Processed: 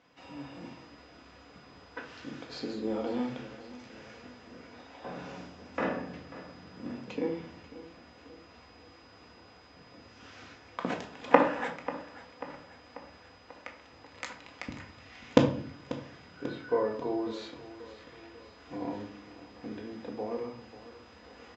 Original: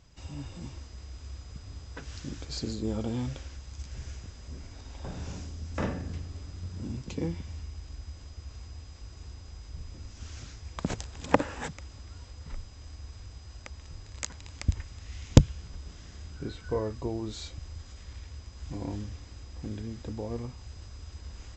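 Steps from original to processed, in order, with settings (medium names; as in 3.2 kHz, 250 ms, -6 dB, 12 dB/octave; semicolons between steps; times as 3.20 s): band-pass 370–2600 Hz; feedback delay 540 ms, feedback 54%, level -16 dB; simulated room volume 490 m³, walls furnished, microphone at 1.9 m; trim +2.5 dB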